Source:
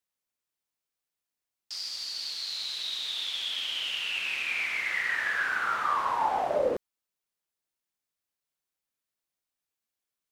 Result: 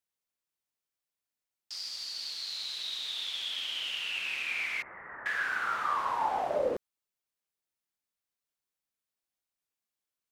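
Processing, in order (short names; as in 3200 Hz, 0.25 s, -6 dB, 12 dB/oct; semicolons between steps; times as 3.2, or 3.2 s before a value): 4.82–5.26 inverse Chebyshev low-pass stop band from 4100 Hz, stop band 60 dB; gain -3 dB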